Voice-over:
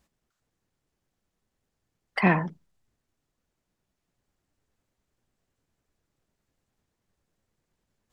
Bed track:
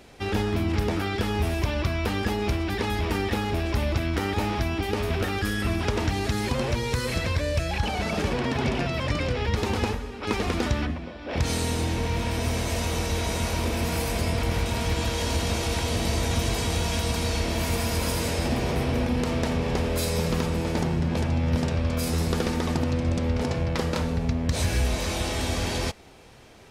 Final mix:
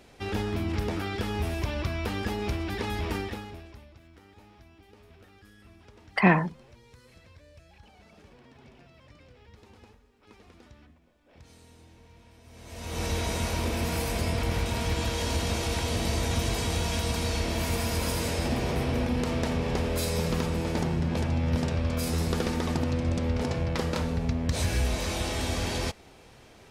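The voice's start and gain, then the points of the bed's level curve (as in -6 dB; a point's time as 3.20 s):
4.00 s, +1.5 dB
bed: 3.16 s -4.5 dB
3.92 s -28 dB
12.44 s -28 dB
13.04 s -2.5 dB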